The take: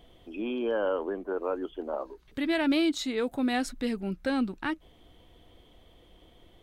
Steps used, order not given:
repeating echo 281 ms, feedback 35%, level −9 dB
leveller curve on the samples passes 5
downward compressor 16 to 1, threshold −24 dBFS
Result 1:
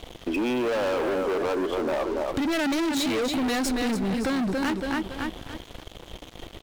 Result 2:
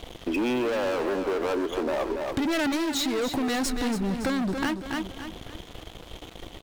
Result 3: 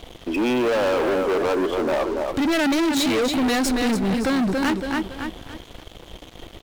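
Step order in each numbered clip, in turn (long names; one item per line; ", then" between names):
repeating echo, then leveller curve on the samples, then downward compressor
leveller curve on the samples, then repeating echo, then downward compressor
repeating echo, then downward compressor, then leveller curve on the samples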